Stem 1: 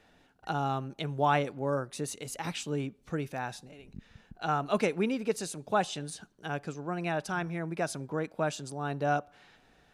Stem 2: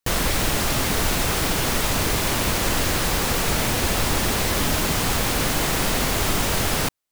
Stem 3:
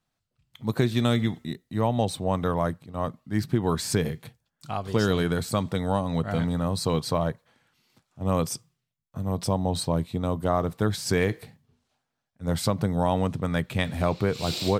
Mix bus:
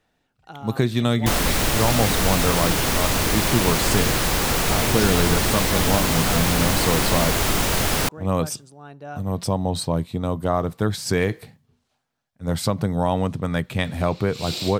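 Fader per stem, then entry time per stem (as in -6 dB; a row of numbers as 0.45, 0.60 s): -7.5, +1.0, +2.5 dB; 0.00, 1.20, 0.00 s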